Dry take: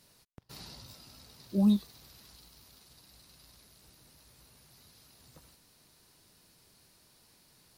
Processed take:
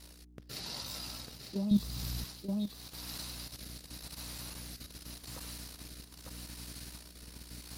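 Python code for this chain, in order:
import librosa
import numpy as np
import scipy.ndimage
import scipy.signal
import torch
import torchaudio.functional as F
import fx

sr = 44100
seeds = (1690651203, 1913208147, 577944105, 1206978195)

y = fx.rotary(x, sr, hz=0.85)
y = 10.0 ** (-19.5 / 20.0) * np.tanh(y / 10.0 ** (-19.5 / 20.0))
y = y + 10.0 ** (-5.0 / 20.0) * np.pad(y, (int(900 * sr / 1000.0), 0))[:len(y)]
y = fx.add_hum(y, sr, base_hz=60, snr_db=15)
y = fx.level_steps(y, sr, step_db=11)
y = fx.low_shelf(y, sr, hz=350.0, db=-10.0)
y = fx.rider(y, sr, range_db=5, speed_s=0.5)
y = fx.bass_treble(y, sr, bass_db=15, treble_db=3, at=(1.71, 2.24))
y = y * librosa.db_to_amplitude(12.0)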